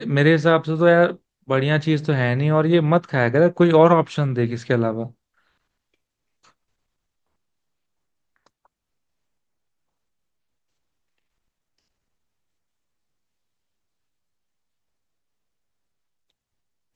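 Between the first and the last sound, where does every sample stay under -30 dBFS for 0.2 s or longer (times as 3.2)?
1.13–1.49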